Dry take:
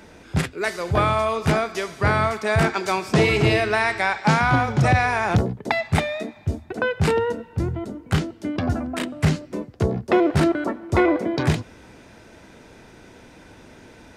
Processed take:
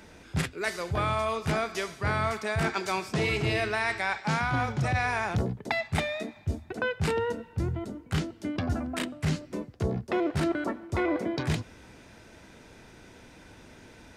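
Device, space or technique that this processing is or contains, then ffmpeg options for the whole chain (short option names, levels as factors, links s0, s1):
compression on the reversed sound: -af "equalizer=f=470:w=0.36:g=-3.5,areverse,acompressor=threshold=0.0891:ratio=6,areverse,volume=0.75"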